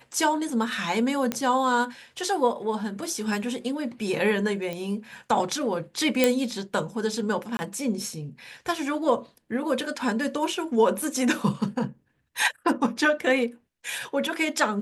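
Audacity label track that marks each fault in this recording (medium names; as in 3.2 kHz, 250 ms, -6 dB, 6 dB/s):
1.320000	1.320000	pop -11 dBFS
4.730000	4.730000	pop -19 dBFS
6.240000	6.240000	pop -5 dBFS
7.570000	7.590000	dropout 20 ms
11.020000	11.020000	dropout 3.9 ms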